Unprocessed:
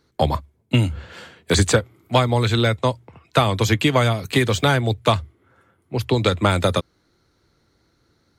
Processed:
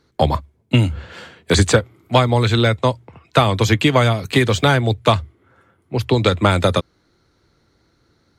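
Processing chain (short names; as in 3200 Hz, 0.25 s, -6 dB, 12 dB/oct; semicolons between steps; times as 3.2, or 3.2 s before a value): high shelf 9700 Hz -7.5 dB; gain +3 dB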